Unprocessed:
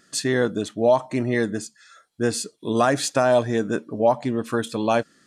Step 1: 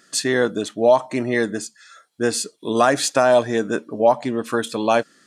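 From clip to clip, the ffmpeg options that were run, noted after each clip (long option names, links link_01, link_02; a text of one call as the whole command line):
ffmpeg -i in.wav -af "highpass=frequency=280:poles=1,volume=4dB" out.wav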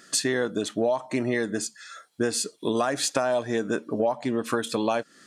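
ffmpeg -i in.wav -af "acompressor=threshold=-25dB:ratio=6,volume=3dB" out.wav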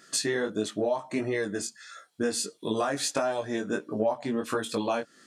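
ffmpeg -i in.wav -af "flanger=delay=18.5:depth=2.7:speed=1.5" out.wav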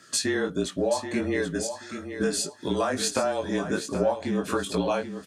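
ffmpeg -i in.wav -af "afreqshift=-31,aecho=1:1:780|1560|2340:0.335|0.0804|0.0193,volume=2dB" out.wav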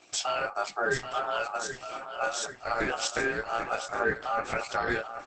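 ffmpeg -i in.wav -filter_complex "[0:a]asplit=2[link_01][link_02];[link_02]adelay=1574,volume=-12dB,highshelf=frequency=4000:gain=-35.4[link_03];[link_01][link_03]amix=inputs=2:normalize=0,aeval=exprs='val(0)*sin(2*PI*1000*n/s)':channel_layout=same" -ar 48000 -c:a libopus -b:a 12k out.opus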